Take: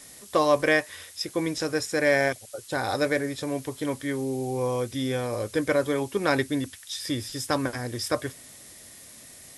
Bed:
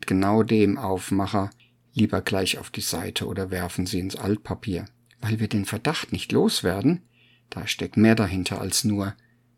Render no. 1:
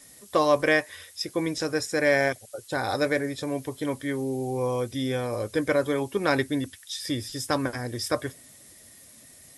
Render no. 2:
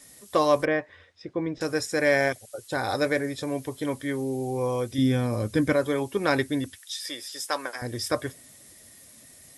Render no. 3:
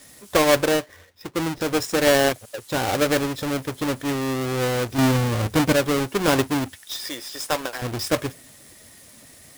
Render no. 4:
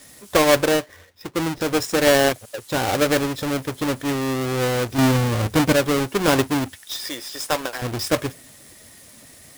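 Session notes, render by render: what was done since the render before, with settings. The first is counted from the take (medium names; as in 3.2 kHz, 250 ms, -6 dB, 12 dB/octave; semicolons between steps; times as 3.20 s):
noise reduction 6 dB, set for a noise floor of -48 dBFS
0.65–1.61 s: tape spacing loss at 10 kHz 38 dB; 4.98–5.73 s: resonant low shelf 320 Hz +7 dB, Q 1.5; 6.79–7.82 s: high-pass 610 Hz
square wave that keeps the level
trim +1.5 dB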